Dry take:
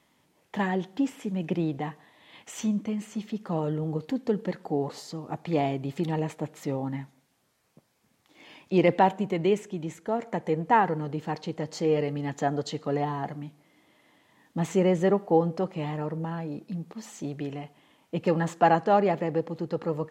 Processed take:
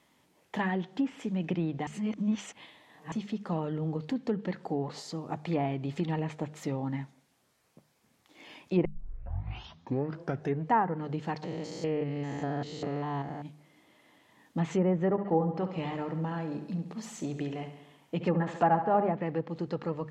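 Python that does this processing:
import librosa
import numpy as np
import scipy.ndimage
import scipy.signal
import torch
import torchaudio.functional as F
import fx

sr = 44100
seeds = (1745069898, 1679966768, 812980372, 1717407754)

y = fx.spec_steps(x, sr, hold_ms=200, at=(11.42, 13.44), fade=0.02)
y = fx.echo_feedback(y, sr, ms=69, feedback_pct=59, wet_db=-10.5, at=(15.04, 19.09))
y = fx.edit(y, sr, fx.reverse_span(start_s=1.87, length_s=1.25),
    fx.tape_start(start_s=8.85, length_s=1.86), tone=tone)
y = fx.env_lowpass_down(y, sr, base_hz=1200.0, full_db=-19.0)
y = fx.hum_notches(y, sr, base_hz=50, count=4)
y = fx.dynamic_eq(y, sr, hz=490.0, q=0.72, threshold_db=-34.0, ratio=4.0, max_db=-6)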